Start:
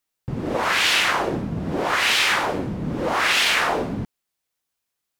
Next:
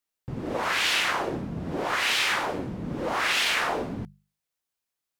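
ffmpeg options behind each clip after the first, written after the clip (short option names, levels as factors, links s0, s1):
-af "bandreject=f=50:t=h:w=6,bandreject=f=100:t=h:w=6,bandreject=f=150:t=h:w=6,bandreject=f=200:t=h:w=6,volume=0.531"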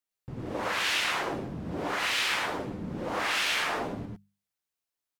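-af "aecho=1:1:104|114:0.596|0.501,volume=0.531"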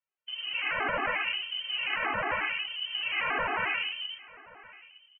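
-af "aecho=1:1:1024:0.0891,lowpass=f=2700:t=q:w=0.5098,lowpass=f=2700:t=q:w=0.6013,lowpass=f=2700:t=q:w=0.9,lowpass=f=2700:t=q:w=2.563,afreqshift=-3200,afftfilt=real='re*gt(sin(2*PI*5.6*pts/sr)*(1-2*mod(floor(b*sr/1024/220),2)),0)':imag='im*gt(sin(2*PI*5.6*pts/sr)*(1-2*mod(floor(b*sr/1024/220),2)),0)':win_size=1024:overlap=0.75,volume=1.58"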